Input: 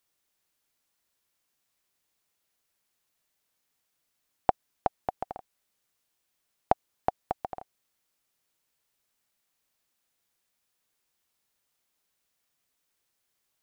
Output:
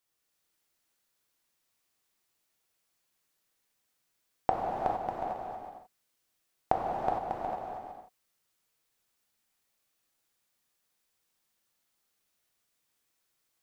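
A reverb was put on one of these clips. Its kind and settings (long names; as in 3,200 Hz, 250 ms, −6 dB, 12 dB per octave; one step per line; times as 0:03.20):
reverb whose tail is shaped and stops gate 480 ms flat, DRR −3 dB
level −4.5 dB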